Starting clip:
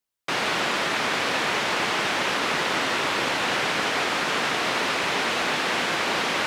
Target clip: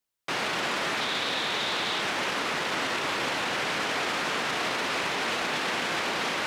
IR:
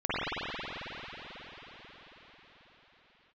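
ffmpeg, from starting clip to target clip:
-filter_complex "[0:a]asettb=1/sr,asplit=3[a][b][c];[a]atrim=end=1.004[d];[b]atrim=start=1:end=2.02,asetpts=PTS-STARTPTS,afade=t=in:d=0.004:c=qsin,afade=t=out:st=1.016:d=0.004:c=qsin,equalizer=f=3.7k:w=3.9:g=10[e];[c]atrim=start=2.016[f];[d][e]acrossfade=d=0.004:c1=hsin:c2=qsin[g];[g][f]acrossfade=d=0.004:c1=qsin:c2=hsin,alimiter=limit=-20.5dB:level=0:latency=1:release=15"

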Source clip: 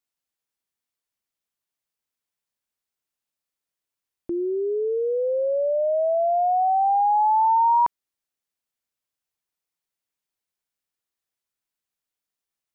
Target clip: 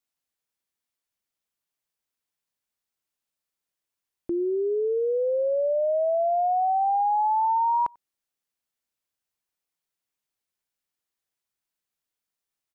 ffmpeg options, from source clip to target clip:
-filter_complex "[0:a]acompressor=threshold=-21dB:ratio=6,asplit=2[a][b];[b]adelay=93.29,volume=-29dB,highshelf=f=4k:g=-2.1[c];[a][c]amix=inputs=2:normalize=0"

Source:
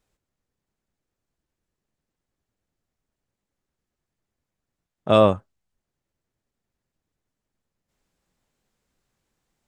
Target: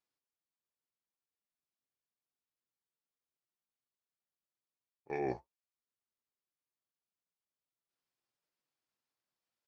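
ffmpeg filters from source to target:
-af "highpass=f=850:p=1,agate=range=-10dB:threshold=-32dB:ratio=16:detection=peak,areverse,acompressor=threshold=-29dB:ratio=16,areverse,asetrate=29433,aresample=44100,atempo=1.49831,flanger=delay=4.9:depth=4.3:regen=-58:speed=1.4:shape=triangular,volume=1dB"

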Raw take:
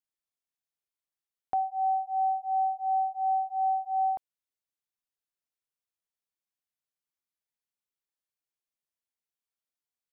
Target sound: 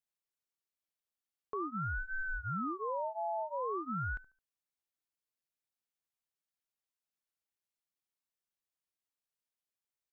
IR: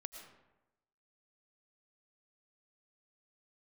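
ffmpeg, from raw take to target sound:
-filter_complex "[0:a]alimiter=level_in=6dB:limit=-24dB:level=0:latency=1:release=123,volume=-6dB,asplit=2[a][b];[b]adelay=72,lowpass=f=810:p=1,volume=-17.5dB,asplit=2[c][d];[d]adelay=72,lowpass=f=810:p=1,volume=0.39,asplit=2[e][f];[f]adelay=72,lowpass=f=810:p=1,volume=0.39[g];[a][c][e][g]amix=inputs=4:normalize=0,aeval=exprs='val(0)*sin(2*PI*430*n/s+430*0.8/0.46*sin(2*PI*0.46*n/s))':c=same"

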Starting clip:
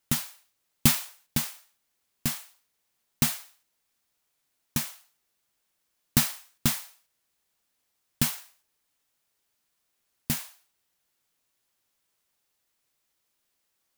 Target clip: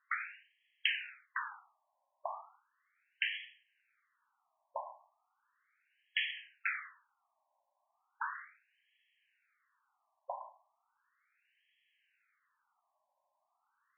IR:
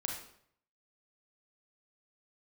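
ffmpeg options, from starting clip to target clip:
-af "acompressor=threshold=-28dB:ratio=4,afftfilt=real='re*between(b*sr/1024,770*pow(2400/770,0.5+0.5*sin(2*PI*0.36*pts/sr))/1.41,770*pow(2400/770,0.5+0.5*sin(2*PI*0.36*pts/sr))*1.41)':imag='im*between(b*sr/1024,770*pow(2400/770,0.5+0.5*sin(2*PI*0.36*pts/sr))/1.41,770*pow(2400/770,0.5+0.5*sin(2*PI*0.36*pts/sr))*1.41)':win_size=1024:overlap=0.75,volume=11dB"

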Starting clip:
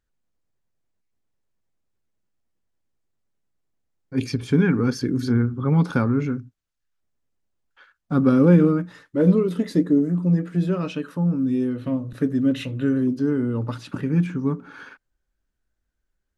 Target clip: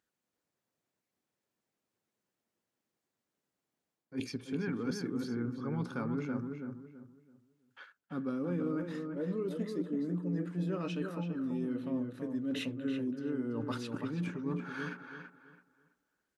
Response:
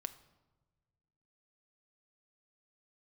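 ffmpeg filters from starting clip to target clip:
-filter_complex "[0:a]highpass=190,areverse,acompressor=threshold=-35dB:ratio=5,areverse,asplit=2[a][b];[b]adelay=331,lowpass=f=2.2k:p=1,volume=-5dB,asplit=2[c][d];[d]adelay=331,lowpass=f=2.2k:p=1,volume=0.3,asplit=2[e][f];[f]adelay=331,lowpass=f=2.2k:p=1,volume=0.3,asplit=2[g][h];[h]adelay=331,lowpass=f=2.2k:p=1,volume=0.3[i];[a][c][e][g][i]amix=inputs=5:normalize=0"

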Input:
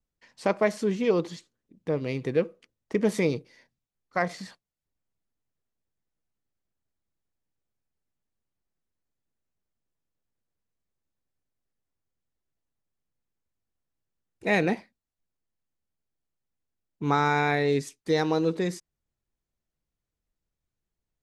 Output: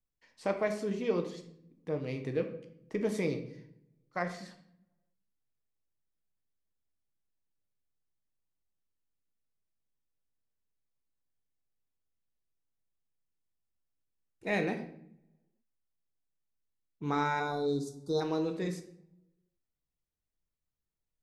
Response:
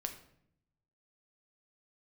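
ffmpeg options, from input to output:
-filter_complex "[0:a]asplit=3[a][b][c];[a]afade=t=out:st=17.39:d=0.02[d];[b]asuperstop=centerf=2300:order=20:qfactor=1.1,afade=t=in:st=17.39:d=0.02,afade=t=out:st=18.2:d=0.02[e];[c]afade=t=in:st=18.2:d=0.02[f];[d][e][f]amix=inputs=3:normalize=0[g];[1:a]atrim=start_sample=2205[h];[g][h]afir=irnorm=-1:irlink=0,volume=-6.5dB"

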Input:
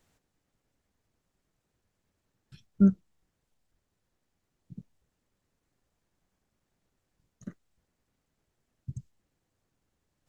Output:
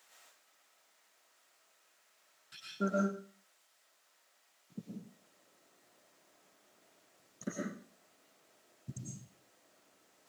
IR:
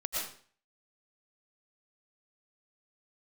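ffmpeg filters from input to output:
-filter_complex "[0:a]asetnsamples=n=441:p=0,asendcmd='4.75 highpass f 330',highpass=850[a];[1:a]atrim=start_sample=2205[b];[a][b]afir=irnorm=-1:irlink=0,volume=11dB"

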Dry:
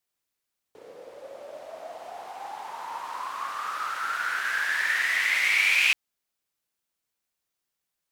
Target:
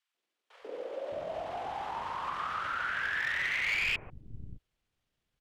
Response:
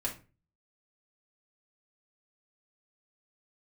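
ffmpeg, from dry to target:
-filter_complex "[0:a]atempo=1.5,aemphasis=mode=reproduction:type=riaa,acrossover=split=3800[a][b];[b]acompressor=threshold=-55dB:ratio=4:attack=1:release=60[c];[a][c]amix=inputs=2:normalize=0,acrossover=split=210|1200[d][e][f];[f]aeval=exprs='clip(val(0),-1,0.0447)':c=same[g];[d][e][g]amix=inputs=3:normalize=0,acrossover=split=140[h][i];[i]acompressor=threshold=-38dB:ratio=3[j];[h][j]amix=inputs=2:normalize=0,equalizer=f=3.1k:w=2.7:g=5,acrossover=split=280|980[k][l][m];[l]adelay=140[n];[k]adelay=610[o];[o][n][m]amix=inputs=3:normalize=0,volume=5.5dB"

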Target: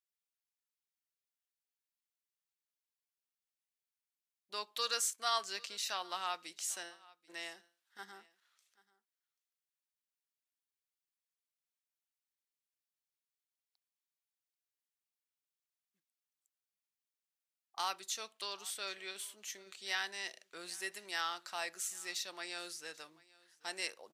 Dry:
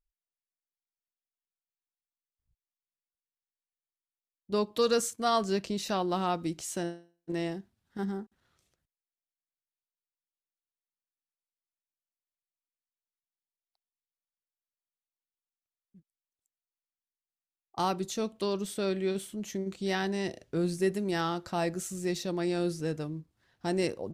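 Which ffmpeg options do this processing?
-af "highpass=1.4k,aecho=1:1:786:0.0708"

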